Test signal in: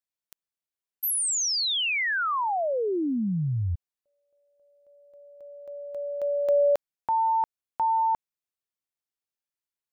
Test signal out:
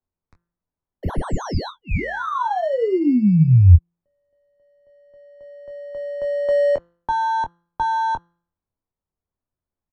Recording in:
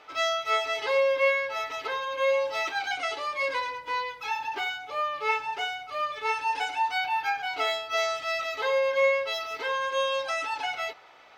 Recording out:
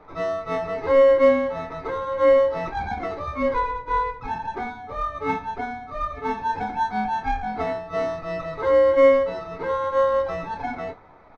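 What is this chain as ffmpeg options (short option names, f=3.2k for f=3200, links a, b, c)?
-filter_complex "[0:a]asuperstop=centerf=3100:order=8:qfactor=2.4,bandreject=f=171.4:t=h:w=4,bandreject=f=342.8:t=h:w=4,bandreject=f=514.2:t=h:w=4,bandreject=f=685.6:t=h:w=4,bandreject=f=857:t=h:w=4,bandreject=f=1.0284k:t=h:w=4,bandreject=f=1.1998k:t=h:w=4,bandreject=f=1.3712k:t=h:w=4,bandreject=f=1.5426k:t=h:w=4,bandreject=f=1.714k:t=h:w=4,bandreject=f=1.8854k:t=h:w=4,bandreject=f=2.0568k:t=h:w=4,bandreject=f=2.2282k:t=h:w=4,bandreject=f=2.3996k:t=h:w=4,bandreject=f=2.571k:t=h:w=4,bandreject=f=2.7424k:t=h:w=4,asplit=2[a][b];[b]acrusher=samples=18:mix=1:aa=0.000001,volume=-5dB[c];[a][c]amix=inputs=2:normalize=0,aemphasis=mode=reproduction:type=riaa,acrossover=split=110[d][e];[e]adynamicsmooth=sensitivity=1:basefreq=4.6k[f];[d][f]amix=inputs=2:normalize=0,equalizer=f=1k:t=o:w=0.43:g=3.5,aecho=1:1:11|24:0.316|0.376,volume=-1dB" -ar 48000 -c:a libvorbis -b:a 128k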